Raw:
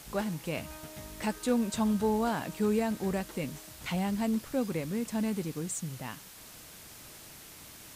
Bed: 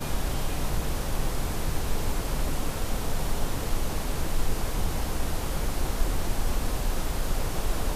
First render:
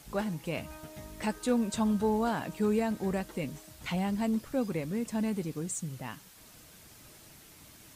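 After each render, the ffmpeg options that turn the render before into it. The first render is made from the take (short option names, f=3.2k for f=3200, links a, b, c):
-af "afftdn=nr=6:nf=-50"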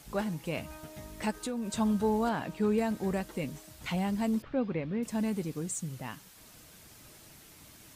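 -filter_complex "[0:a]asplit=3[a][b][c];[a]afade=t=out:st=1.3:d=0.02[d];[b]acompressor=threshold=-31dB:ratio=6:attack=3.2:release=140:knee=1:detection=peak,afade=t=in:st=1.3:d=0.02,afade=t=out:st=1.76:d=0.02[e];[c]afade=t=in:st=1.76:d=0.02[f];[d][e][f]amix=inputs=3:normalize=0,asettb=1/sr,asplit=3[g][h][i];[g]atrim=end=2.294[j];[h]atrim=start=2.29:end=2.78,asetpts=PTS-STARTPTS,afade=t=in:d=0.004:c=qsin,afade=t=out:st=0.486:d=0.004:c=qsin,acrossover=split=5000[k][l];[l]acompressor=threshold=-59dB:ratio=4:attack=1:release=60[m];[k][m]amix=inputs=2:normalize=0[n];[i]atrim=start=2.776[o];[j][n]acrossfade=d=0.004:c1=hsin:c2=qsin[p];[p][o]acrossfade=d=0.004:c1=qsin:c2=hsin,asettb=1/sr,asplit=3[q][r][s];[q]atrim=end=4.424[t];[r]atrim=start=4.42:end=5.03,asetpts=PTS-STARTPTS,afade=t=in:d=0.004:c=qsin,afade=t=out:st=0.606:d=0.004:c=qsin,lowpass=f=3.5k:w=0.5412,lowpass=f=3.5k:w=1.3066[u];[s]atrim=start=5.026[v];[t][u]acrossfade=d=0.004:c1=hsin:c2=qsin[w];[w][v]acrossfade=d=0.004:c1=qsin:c2=hsin"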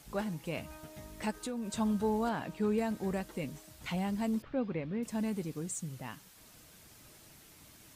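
-af "volume=-3dB"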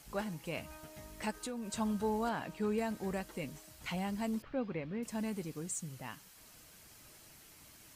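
-af "equalizer=f=170:w=0.31:g=-4,bandreject=f=3.6k:w=18"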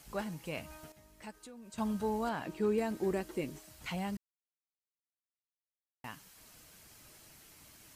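-filter_complex "[0:a]asettb=1/sr,asplit=3[a][b][c];[a]atrim=end=2.464[d];[b]atrim=start=2.46:end=3.59,asetpts=PTS-STARTPTS,afade=t=in:d=0.004:c=qsin,afade=t=out:st=1.126:d=0.004:c=qsin,equalizer=f=350:t=o:w=0.43:g=12.5[e];[c]atrim=start=3.586[f];[d][e]acrossfade=d=0.004:c1=hsin:c2=qsin[g];[g][f]acrossfade=d=0.004:c1=qsin:c2=hsin,asplit=5[h][i][j][k][l];[h]atrim=end=0.922[m];[i]atrim=start=0.918:end=1.782,asetpts=PTS-STARTPTS,volume=-10dB[n];[j]atrim=start=1.778:end=4.17,asetpts=PTS-STARTPTS,afade=t=out:st=2.388:d=0.004:c=hsin[o];[k]atrim=start=4.17:end=6.04,asetpts=PTS-STARTPTS,volume=0[p];[l]atrim=start=6.04,asetpts=PTS-STARTPTS,afade=t=in:d=0.004:c=hsin[q];[m][n]acrossfade=d=0.004:c1=hsin:c2=hsin[r];[o][p][q]concat=n=3:v=0:a=1[s];[r][s]acrossfade=d=0.004:c1=hsin:c2=hsin"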